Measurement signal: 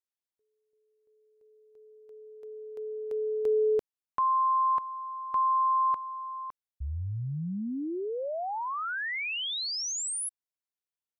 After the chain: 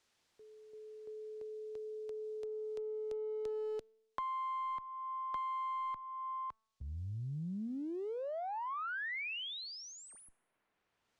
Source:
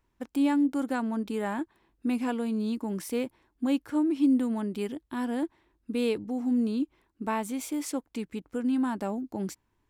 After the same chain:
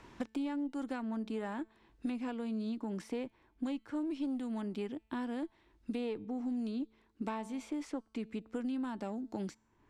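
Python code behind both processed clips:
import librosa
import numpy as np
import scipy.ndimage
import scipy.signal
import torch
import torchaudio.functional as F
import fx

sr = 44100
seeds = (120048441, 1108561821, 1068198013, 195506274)

p1 = fx.diode_clip(x, sr, knee_db=-18.0)
p2 = scipy.signal.sosfilt(scipy.signal.butter(2, 6200.0, 'lowpass', fs=sr, output='sos'), p1)
p3 = fx.comb_fb(p2, sr, f0_hz=220.0, decay_s=0.64, harmonics='all', damping=0.0, mix_pct=30)
p4 = np.clip(10.0 ** (26.5 / 20.0) * p3, -1.0, 1.0) / 10.0 ** (26.5 / 20.0)
p5 = p3 + (p4 * 10.0 ** (-12.0 / 20.0))
p6 = fx.band_squash(p5, sr, depth_pct=100)
y = p6 * 10.0 ** (-7.5 / 20.0)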